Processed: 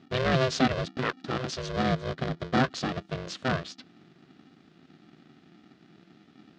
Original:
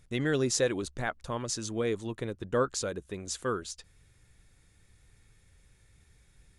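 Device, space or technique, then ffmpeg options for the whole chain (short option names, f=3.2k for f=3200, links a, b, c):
ring modulator pedal into a guitar cabinet: -filter_complex "[0:a]aeval=exprs='val(0)*sgn(sin(2*PI*260*n/s))':c=same,highpass=78,equalizer=f=160:t=q:w=4:g=5,equalizer=f=870:t=q:w=4:g=-9,equalizer=f=2.2k:t=q:w=4:g=-4,lowpass=f=4.6k:w=0.5412,lowpass=f=4.6k:w=1.3066,asettb=1/sr,asplit=3[a][b][c];[a]atrim=end=1.714[d];[b]atrim=start=1.71:end=2.61,asetpts=PTS-STARTPTS,afade=t=in:d=0.004:c=qsin,afade=t=out:st=0.896:d=0.004:c=qsin,bandreject=f=2.7k:w=10[e];[c]atrim=start=2.606[f];[d][e]acrossfade=d=0.004:c1=hsin:c2=qsin[g];[g][f]acrossfade=d=0.004:c1=qsin:c2=hsin,volume=4.5dB"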